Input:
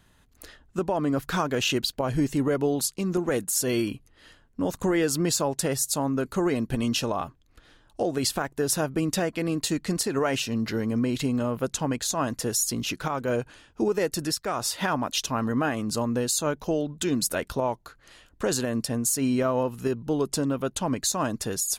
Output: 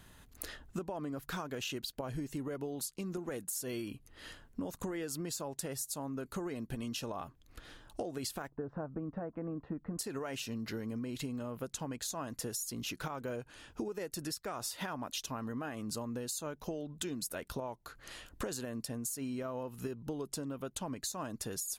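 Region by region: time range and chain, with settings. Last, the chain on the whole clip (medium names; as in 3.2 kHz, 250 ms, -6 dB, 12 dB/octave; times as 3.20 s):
8.50–9.99 s: low-pass 1.3 kHz 24 dB/octave + band-stop 380 Hz, Q 5.8
whole clip: peaking EQ 14 kHz +5.5 dB 0.79 oct; compression 10:1, threshold -39 dBFS; trim +2.5 dB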